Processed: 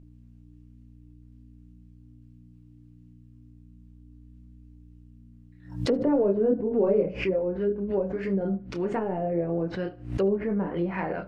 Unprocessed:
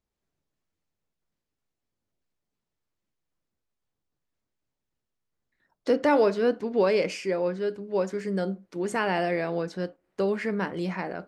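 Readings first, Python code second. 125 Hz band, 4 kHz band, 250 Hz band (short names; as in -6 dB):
+4.0 dB, -5.5 dB, +2.5 dB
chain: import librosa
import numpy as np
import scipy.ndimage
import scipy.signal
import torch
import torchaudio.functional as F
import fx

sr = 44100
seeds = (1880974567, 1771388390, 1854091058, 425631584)

p1 = fx.add_hum(x, sr, base_hz=60, snr_db=22)
p2 = fx.peak_eq(p1, sr, hz=2700.0, db=5.5, octaves=0.49)
p3 = 10.0 ** (-24.5 / 20.0) * np.tanh(p2 / 10.0 ** (-24.5 / 20.0))
p4 = p2 + (p3 * librosa.db_to_amplitude(-8.0))
p5 = fx.chorus_voices(p4, sr, voices=6, hz=0.3, base_ms=27, depth_ms=3.7, mix_pct=40)
p6 = fx.env_lowpass_down(p5, sr, base_hz=490.0, full_db=-24.0)
p7 = p6 + fx.echo_feedback(p6, sr, ms=74, feedback_pct=36, wet_db=-23.0, dry=0)
p8 = fx.pre_swell(p7, sr, db_per_s=110.0)
y = p8 * librosa.db_to_amplitude(3.0)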